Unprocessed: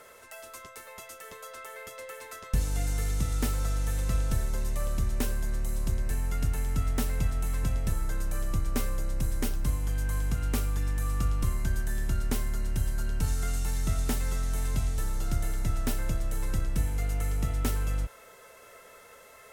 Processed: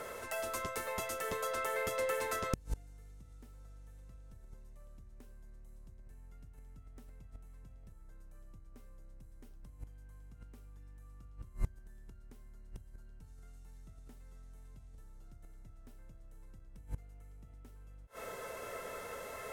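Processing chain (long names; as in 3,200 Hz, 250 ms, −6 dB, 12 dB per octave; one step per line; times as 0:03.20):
tilt shelving filter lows +3.5 dB, about 1,400 Hz
downward compressor 6 to 1, threshold −31 dBFS, peak gain reduction 13 dB
gate with flip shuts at −28 dBFS, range −27 dB
level +6.5 dB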